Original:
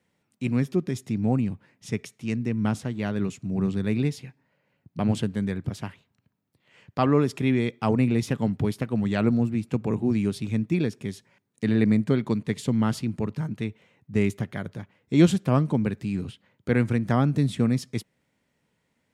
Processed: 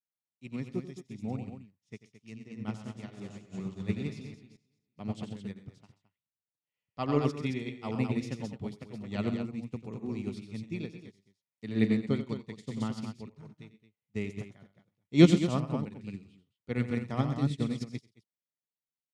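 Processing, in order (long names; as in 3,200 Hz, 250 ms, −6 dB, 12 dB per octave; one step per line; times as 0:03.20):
0:02.52–0:05.00: feedback delay that plays each chunk backwards 228 ms, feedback 41%, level −5 dB
low-pass filter 5,600 Hz 12 dB per octave
high-shelf EQ 3,600 Hz +11 dB
notch filter 1,600 Hz, Q 6.2
loudspeakers that aren't time-aligned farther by 31 metres −7 dB, 45 metres −11 dB, 75 metres −5 dB
expander for the loud parts 2.5 to 1, over −38 dBFS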